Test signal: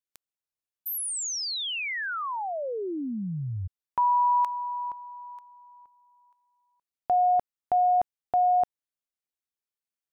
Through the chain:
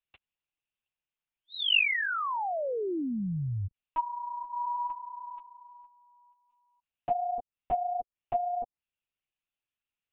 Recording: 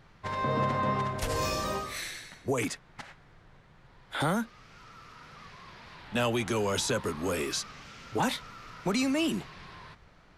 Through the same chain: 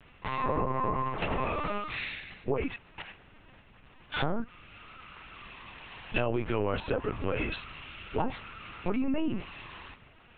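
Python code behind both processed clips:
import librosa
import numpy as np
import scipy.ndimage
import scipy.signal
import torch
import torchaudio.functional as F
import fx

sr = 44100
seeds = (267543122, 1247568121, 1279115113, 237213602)

y = fx.env_lowpass_down(x, sr, base_hz=410.0, full_db=-21.5)
y = fx.peak_eq(y, sr, hz=2700.0, db=11.0, octaves=0.4)
y = fx.lpc_vocoder(y, sr, seeds[0], excitation='pitch_kept', order=10)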